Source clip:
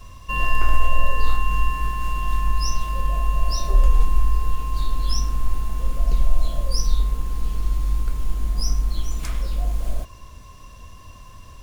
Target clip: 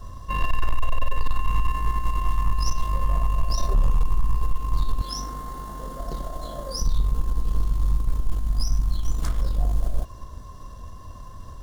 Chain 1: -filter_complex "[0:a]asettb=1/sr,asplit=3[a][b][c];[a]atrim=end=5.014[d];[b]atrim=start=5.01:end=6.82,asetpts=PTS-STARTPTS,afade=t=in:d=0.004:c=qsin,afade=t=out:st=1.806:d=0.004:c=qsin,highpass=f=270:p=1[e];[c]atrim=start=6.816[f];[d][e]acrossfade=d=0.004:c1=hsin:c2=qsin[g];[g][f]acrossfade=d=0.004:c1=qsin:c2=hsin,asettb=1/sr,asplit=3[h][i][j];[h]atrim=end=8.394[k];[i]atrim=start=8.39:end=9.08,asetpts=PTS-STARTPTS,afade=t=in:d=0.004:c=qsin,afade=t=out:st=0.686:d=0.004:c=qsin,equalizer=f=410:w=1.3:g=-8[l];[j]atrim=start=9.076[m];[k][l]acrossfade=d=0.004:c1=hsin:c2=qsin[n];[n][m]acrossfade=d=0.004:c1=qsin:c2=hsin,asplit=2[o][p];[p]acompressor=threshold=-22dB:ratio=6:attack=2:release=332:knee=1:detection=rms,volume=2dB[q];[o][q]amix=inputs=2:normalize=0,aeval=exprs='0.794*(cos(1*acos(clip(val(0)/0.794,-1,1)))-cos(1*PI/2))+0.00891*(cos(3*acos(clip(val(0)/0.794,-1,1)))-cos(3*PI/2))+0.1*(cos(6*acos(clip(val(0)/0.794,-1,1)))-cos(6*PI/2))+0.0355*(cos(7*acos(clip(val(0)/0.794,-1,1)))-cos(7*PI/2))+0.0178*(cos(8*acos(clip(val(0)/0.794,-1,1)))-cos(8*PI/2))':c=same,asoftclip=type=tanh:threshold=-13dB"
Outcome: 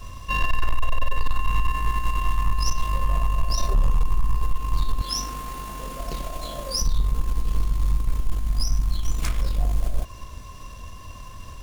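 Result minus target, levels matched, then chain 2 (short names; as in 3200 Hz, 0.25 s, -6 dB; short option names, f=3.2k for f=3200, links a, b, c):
2000 Hz band +4.5 dB
-filter_complex "[0:a]asettb=1/sr,asplit=3[a][b][c];[a]atrim=end=5.014[d];[b]atrim=start=5.01:end=6.82,asetpts=PTS-STARTPTS,afade=t=in:d=0.004:c=qsin,afade=t=out:st=1.806:d=0.004:c=qsin,highpass=f=270:p=1[e];[c]atrim=start=6.816[f];[d][e]acrossfade=d=0.004:c1=hsin:c2=qsin[g];[g][f]acrossfade=d=0.004:c1=qsin:c2=hsin,asettb=1/sr,asplit=3[h][i][j];[h]atrim=end=8.394[k];[i]atrim=start=8.39:end=9.08,asetpts=PTS-STARTPTS,afade=t=in:d=0.004:c=qsin,afade=t=out:st=0.686:d=0.004:c=qsin,equalizer=f=410:w=1.3:g=-8[l];[j]atrim=start=9.076[m];[k][l]acrossfade=d=0.004:c1=hsin:c2=qsin[n];[n][m]acrossfade=d=0.004:c1=qsin:c2=hsin,asplit=2[o][p];[p]acompressor=threshold=-22dB:ratio=6:attack=2:release=332:knee=1:detection=rms,lowpass=f=2.5k:w=0.5412,lowpass=f=2.5k:w=1.3066,volume=2dB[q];[o][q]amix=inputs=2:normalize=0,aeval=exprs='0.794*(cos(1*acos(clip(val(0)/0.794,-1,1)))-cos(1*PI/2))+0.00891*(cos(3*acos(clip(val(0)/0.794,-1,1)))-cos(3*PI/2))+0.1*(cos(6*acos(clip(val(0)/0.794,-1,1)))-cos(6*PI/2))+0.0355*(cos(7*acos(clip(val(0)/0.794,-1,1)))-cos(7*PI/2))+0.0178*(cos(8*acos(clip(val(0)/0.794,-1,1)))-cos(8*PI/2))':c=same,asoftclip=type=tanh:threshold=-13dB"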